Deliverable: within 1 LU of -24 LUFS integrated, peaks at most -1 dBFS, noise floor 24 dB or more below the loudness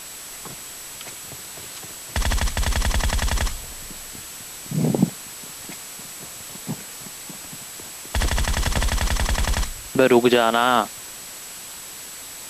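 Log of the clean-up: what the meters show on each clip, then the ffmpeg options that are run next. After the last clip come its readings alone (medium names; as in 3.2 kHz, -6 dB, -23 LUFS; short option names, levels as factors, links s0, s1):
steady tone 7.8 kHz; tone level -40 dBFS; noise floor -37 dBFS; noise floor target -49 dBFS; loudness -25.0 LUFS; peak level -3.5 dBFS; loudness target -24.0 LUFS
-> -af "bandreject=f=7800:w=30"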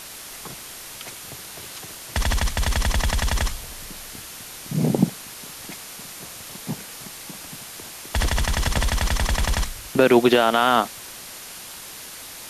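steady tone not found; noise floor -39 dBFS; noise floor target -47 dBFS
-> -af "afftdn=nr=8:nf=-39"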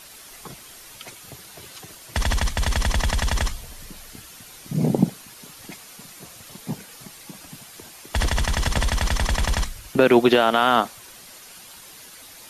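noise floor -44 dBFS; noise floor target -47 dBFS
-> -af "afftdn=nr=6:nf=-44"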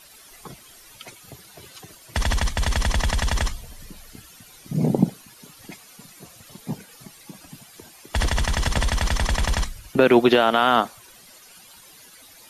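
noise floor -49 dBFS; loudness -22.5 LUFS; peak level -4.0 dBFS; loudness target -24.0 LUFS
-> -af "volume=0.841"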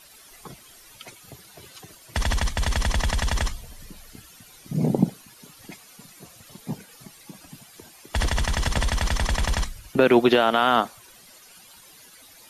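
loudness -24.0 LUFS; peak level -5.5 dBFS; noise floor -50 dBFS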